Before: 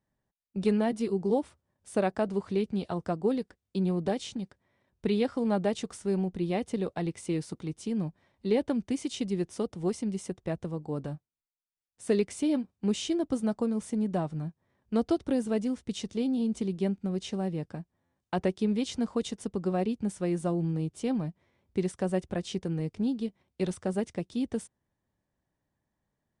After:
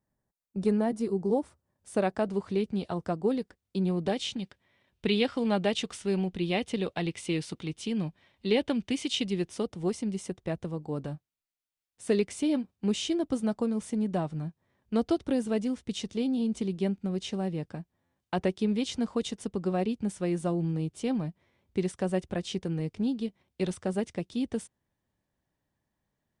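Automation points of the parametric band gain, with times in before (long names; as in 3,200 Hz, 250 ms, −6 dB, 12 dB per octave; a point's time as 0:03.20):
parametric band 3,000 Hz 1.3 octaves
0:01.37 −8 dB
0:02.05 +1 dB
0:03.80 +1 dB
0:04.42 +11.5 dB
0:09.20 +11.5 dB
0:09.74 +3 dB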